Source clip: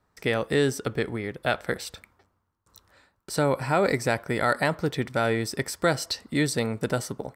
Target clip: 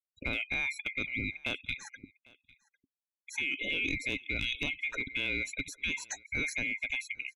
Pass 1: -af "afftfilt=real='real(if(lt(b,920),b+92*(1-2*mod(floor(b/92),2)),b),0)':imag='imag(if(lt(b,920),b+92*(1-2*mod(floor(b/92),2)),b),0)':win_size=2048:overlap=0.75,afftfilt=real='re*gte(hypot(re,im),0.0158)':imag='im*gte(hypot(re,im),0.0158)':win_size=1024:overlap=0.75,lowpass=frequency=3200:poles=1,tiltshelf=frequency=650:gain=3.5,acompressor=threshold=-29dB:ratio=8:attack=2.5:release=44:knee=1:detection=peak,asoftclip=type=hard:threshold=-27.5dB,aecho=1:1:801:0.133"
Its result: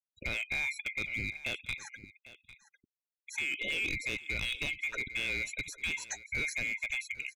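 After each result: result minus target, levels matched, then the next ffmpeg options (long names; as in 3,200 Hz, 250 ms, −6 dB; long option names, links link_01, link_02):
hard clipping: distortion +19 dB; 250 Hz band −5.5 dB; echo-to-direct +8 dB
-af "afftfilt=real='real(if(lt(b,920),b+92*(1-2*mod(floor(b/92),2)),b),0)':imag='imag(if(lt(b,920),b+92*(1-2*mod(floor(b/92),2)),b),0)':win_size=2048:overlap=0.75,afftfilt=real='re*gte(hypot(re,im),0.0158)':imag='im*gte(hypot(re,im),0.0158)':win_size=1024:overlap=0.75,lowpass=frequency=3200:poles=1,tiltshelf=frequency=650:gain=3.5,acompressor=threshold=-29dB:ratio=8:attack=2.5:release=44:knee=1:detection=peak,asoftclip=type=hard:threshold=-21dB,aecho=1:1:801:0.133"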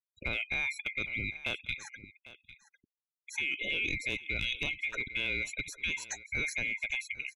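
echo-to-direct +8 dB; 250 Hz band −4.5 dB
-af "afftfilt=real='real(if(lt(b,920),b+92*(1-2*mod(floor(b/92),2)),b),0)':imag='imag(if(lt(b,920),b+92*(1-2*mod(floor(b/92),2)),b),0)':win_size=2048:overlap=0.75,afftfilt=real='re*gte(hypot(re,im),0.0158)':imag='im*gte(hypot(re,im),0.0158)':win_size=1024:overlap=0.75,lowpass=frequency=3200:poles=1,tiltshelf=frequency=650:gain=3.5,acompressor=threshold=-29dB:ratio=8:attack=2.5:release=44:knee=1:detection=peak,asoftclip=type=hard:threshold=-21dB,aecho=1:1:801:0.0531"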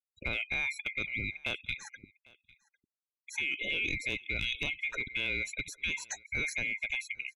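250 Hz band −4.5 dB
-af "afftfilt=real='real(if(lt(b,920),b+92*(1-2*mod(floor(b/92),2)),b),0)':imag='imag(if(lt(b,920),b+92*(1-2*mod(floor(b/92),2)),b),0)':win_size=2048:overlap=0.75,afftfilt=real='re*gte(hypot(re,im),0.0158)':imag='im*gte(hypot(re,im),0.0158)':win_size=1024:overlap=0.75,lowpass=frequency=3200:poles=1,tiltshelf=frequency=650:gain=3.5,acompressor=threshold=-29dB:ratio=8:attack=2.5:release=44:knee=1:detection=peak,equalizer=frequency=270:width=4:gain=9,asoftclip=type=hard:threshold=-21dB,aecho=1:1:801:0.0531"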